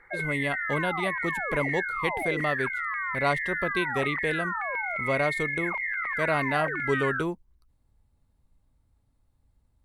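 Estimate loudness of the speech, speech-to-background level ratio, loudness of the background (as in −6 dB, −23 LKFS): −30.5 LKFS, −1.0 dB, −29.5 LKFS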